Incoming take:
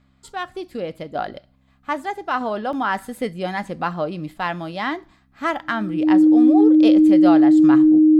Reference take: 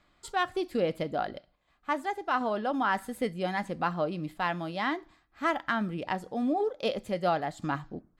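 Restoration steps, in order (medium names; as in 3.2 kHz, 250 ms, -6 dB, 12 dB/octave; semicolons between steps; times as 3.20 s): de-hum 65.9 Hz, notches 4; band-stop 310 Hz, Q 30; interpolate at 2.73 s, 1.2 ms; trim 0 dB, from 1.15 s -5.5 dB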